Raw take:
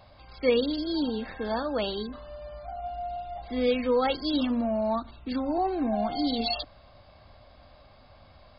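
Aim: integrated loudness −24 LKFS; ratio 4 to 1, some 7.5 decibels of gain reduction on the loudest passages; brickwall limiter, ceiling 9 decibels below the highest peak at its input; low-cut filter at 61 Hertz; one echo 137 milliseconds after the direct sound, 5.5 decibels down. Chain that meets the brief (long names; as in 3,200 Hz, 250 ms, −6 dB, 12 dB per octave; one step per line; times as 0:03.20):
high-pass filter 61 Hz
downward compressor 4 to 1, threshold −27 dBFS
brickwall limiter −27.5 dBFS
single-tap delay 137 ms −5.5 dB
level +11 dB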